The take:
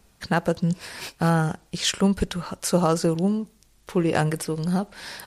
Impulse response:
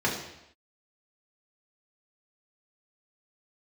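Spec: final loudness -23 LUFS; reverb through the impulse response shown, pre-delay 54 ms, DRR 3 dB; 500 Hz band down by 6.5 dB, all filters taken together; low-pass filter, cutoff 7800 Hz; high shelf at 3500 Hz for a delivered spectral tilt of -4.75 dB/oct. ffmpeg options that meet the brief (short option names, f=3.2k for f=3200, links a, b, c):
-filter_complex "[0:a]lowpass=7.8k,equalizer=f=500:t=o:g=-8.5,highshelf=f=3.5k:g=6,asplit=2[a][b];[1:a]atrim=start_sample=2205,adelay=54[c];[b][c]afir=irnorm=-1:irlink=0,volume=-15dB[d];[a][d]amix=inputs=2:normalize=0,volume=0.5dB"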